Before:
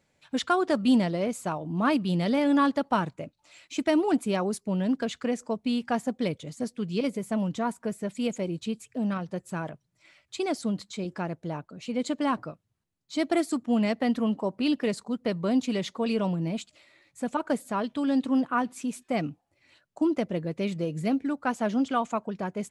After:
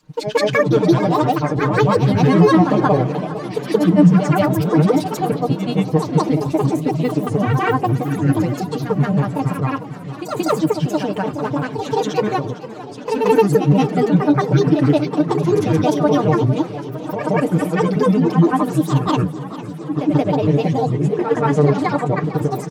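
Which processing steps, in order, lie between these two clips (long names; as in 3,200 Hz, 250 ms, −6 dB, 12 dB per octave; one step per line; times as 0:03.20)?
tilt shelving filter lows +3.5 dB, about 1,300 Hz
feedback delay network reverb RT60 0.54 s, high-frequency decay 0.55×, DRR 15 dB
in parallel at +3 dB: brickwall limiter −18 dBFS, peak gain reduction 8 dB
on the sum: granular cloud, grains 20 per second, pitch spread up and down by 12 semitones
comb filter 6.6 ms, depth 85%
on a send: backwards echo 177 ms −6.5 dB
on the sum: feedback echo with a swinging delay time 453 ms, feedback 72%, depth 106 cents, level −15 dB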